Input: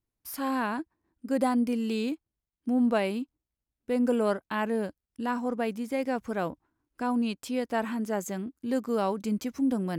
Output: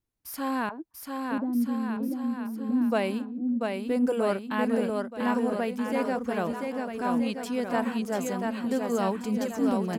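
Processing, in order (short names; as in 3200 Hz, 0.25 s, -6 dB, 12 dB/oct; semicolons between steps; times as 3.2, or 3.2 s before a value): 0.69–2.92 auto-wah 240–3200 Hz, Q 2.6, down, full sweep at -27 dBFS; bouncing-ball echo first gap 0.69 s, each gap 0.85×, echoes 5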